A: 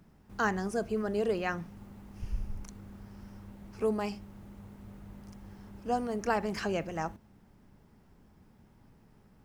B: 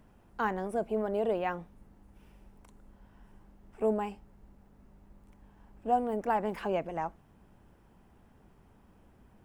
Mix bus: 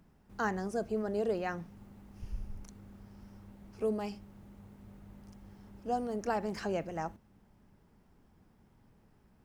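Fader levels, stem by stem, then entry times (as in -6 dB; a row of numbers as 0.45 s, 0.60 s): -5.0 dB, -11.5 dB; 0.00 s, 0.00 s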